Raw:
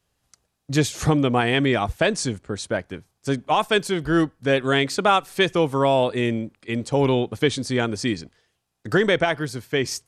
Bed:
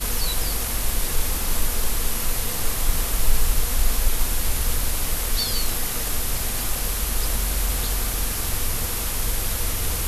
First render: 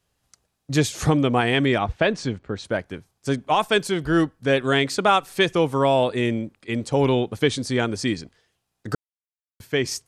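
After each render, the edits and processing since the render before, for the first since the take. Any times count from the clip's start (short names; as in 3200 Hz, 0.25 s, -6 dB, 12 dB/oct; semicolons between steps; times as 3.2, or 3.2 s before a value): 1.78–2.65 LPF 3800 Hz; 8.95–9.6 mute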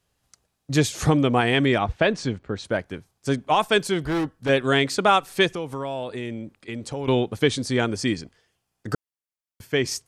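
4.05–4.49 overloaded stage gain 21.5 dB; 5.47–7.08 compressor 2.5:1, threshold -31 dBFS; 7.91–9.75 notch 3900 Hz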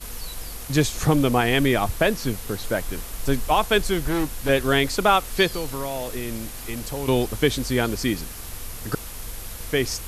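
add bed -10.5 dB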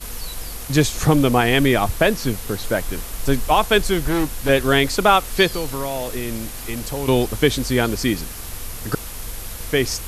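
gain +3.5 dB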